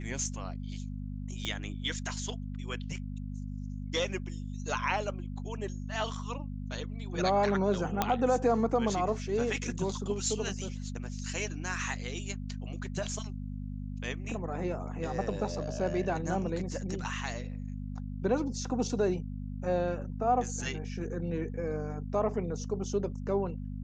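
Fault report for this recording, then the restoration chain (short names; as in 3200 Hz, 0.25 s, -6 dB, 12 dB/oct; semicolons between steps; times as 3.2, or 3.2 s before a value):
hum 50 Hz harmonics 5 -38 dBFS
1.45 pop -20 dBFS
8.02 pop -11 dBFS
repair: de-click; de-hum 50 Hz, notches 5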